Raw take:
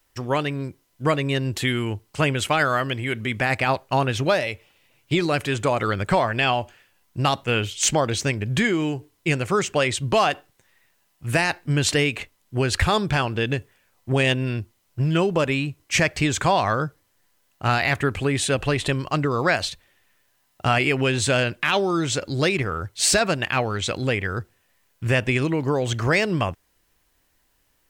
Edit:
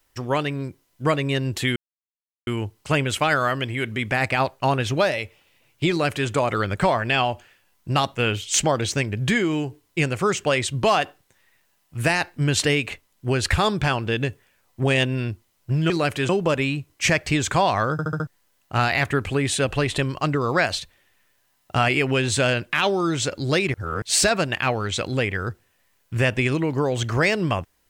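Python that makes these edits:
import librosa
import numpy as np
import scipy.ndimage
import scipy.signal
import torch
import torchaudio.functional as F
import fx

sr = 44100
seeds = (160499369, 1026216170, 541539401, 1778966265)

y = fx.edit(x, sr, fx.insert_silence(at_s=1.76, length_s=0.71),
    fx.duplicate(start_s=5.19, length_s=0.39, to_s=15.19),
    fx.stutter_over(start_s=16.82, slice_s=0.07, count=5),
    fx.reverse_span(start_s=22.64, length_s=0.28), tone=tone)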